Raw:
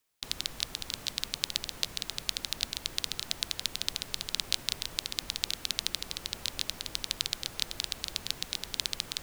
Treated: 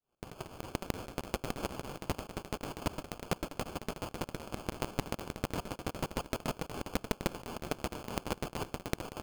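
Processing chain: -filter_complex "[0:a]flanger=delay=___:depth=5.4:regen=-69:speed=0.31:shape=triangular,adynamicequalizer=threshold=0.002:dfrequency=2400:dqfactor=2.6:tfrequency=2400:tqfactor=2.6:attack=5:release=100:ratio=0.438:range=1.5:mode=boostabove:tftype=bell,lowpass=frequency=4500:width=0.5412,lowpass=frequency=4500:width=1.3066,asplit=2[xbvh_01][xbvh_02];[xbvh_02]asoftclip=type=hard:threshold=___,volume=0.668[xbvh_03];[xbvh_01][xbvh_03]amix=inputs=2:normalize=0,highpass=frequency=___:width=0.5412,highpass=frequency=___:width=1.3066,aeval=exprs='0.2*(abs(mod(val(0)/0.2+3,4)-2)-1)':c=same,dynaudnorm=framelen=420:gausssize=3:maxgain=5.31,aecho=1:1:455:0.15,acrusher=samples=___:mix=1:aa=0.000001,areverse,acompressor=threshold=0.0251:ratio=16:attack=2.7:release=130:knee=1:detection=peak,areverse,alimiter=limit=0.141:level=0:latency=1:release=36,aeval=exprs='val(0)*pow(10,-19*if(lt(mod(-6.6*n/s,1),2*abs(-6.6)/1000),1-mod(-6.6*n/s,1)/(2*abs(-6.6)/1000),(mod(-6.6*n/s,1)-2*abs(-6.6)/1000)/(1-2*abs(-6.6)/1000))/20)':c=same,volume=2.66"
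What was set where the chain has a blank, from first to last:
2.5, 0.1, 1500, 1500, 23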